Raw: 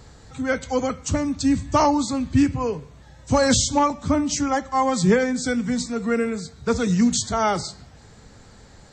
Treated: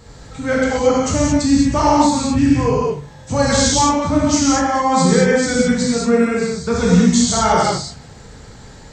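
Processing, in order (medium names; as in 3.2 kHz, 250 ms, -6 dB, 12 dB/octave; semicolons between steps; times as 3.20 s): peak limiter -14 dBFS, peak gain reduction 7 dB; gated-style reverb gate 250 ms flat, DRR -6 dB; trim +1.5 dB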